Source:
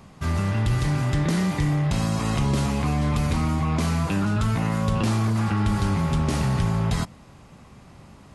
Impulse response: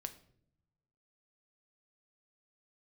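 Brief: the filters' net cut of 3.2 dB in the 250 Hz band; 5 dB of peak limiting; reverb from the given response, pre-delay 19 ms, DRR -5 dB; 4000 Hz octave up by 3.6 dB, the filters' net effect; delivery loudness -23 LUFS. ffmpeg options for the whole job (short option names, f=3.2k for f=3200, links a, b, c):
-filter_complex "[0:a]equalizer=f=250:t=o:g=-5,equalizer=f=4k:t=o:g=4.5,alimiter=limit=-18dB:level=0:latency=1,asplit=2[a][b];[1:a]atrim=start_sample=2205,adelay=19[c];[b][c]afir=irnorm=-1:irlink=0,volume=8dB[d];[a][d]amix=inputs=2:normalize=0,volume=-3.5dB"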